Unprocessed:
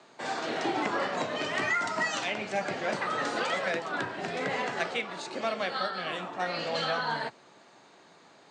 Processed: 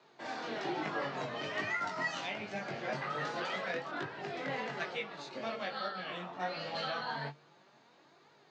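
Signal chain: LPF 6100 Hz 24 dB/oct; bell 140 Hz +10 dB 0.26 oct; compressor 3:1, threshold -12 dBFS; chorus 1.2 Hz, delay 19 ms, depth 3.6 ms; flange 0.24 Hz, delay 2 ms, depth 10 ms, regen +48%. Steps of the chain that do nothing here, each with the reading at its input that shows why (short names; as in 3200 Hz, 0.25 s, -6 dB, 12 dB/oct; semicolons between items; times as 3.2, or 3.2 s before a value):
compressor, threshold -12 dBFS: input peak -16.0 dBFS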